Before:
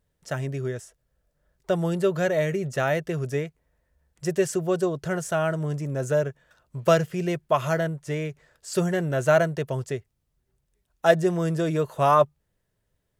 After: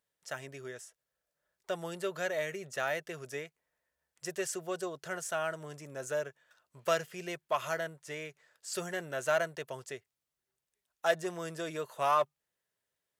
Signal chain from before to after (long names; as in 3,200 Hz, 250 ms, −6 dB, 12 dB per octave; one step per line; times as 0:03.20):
in parallel at −9 dB: hard clipping −17.5 dBFS, distortion −12 dB
on the sum: high-pass filter 1,100 Hz 6 dB per octave
level −6.5 dB